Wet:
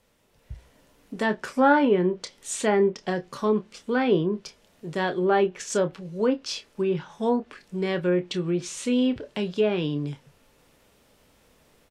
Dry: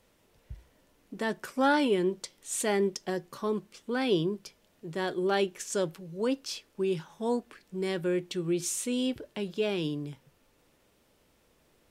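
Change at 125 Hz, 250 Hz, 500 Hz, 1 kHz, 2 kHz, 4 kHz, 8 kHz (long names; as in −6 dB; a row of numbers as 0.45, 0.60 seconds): +6.5, +6.0, +6.0, +7.0, +5.5, +2.0, 0.0 decibels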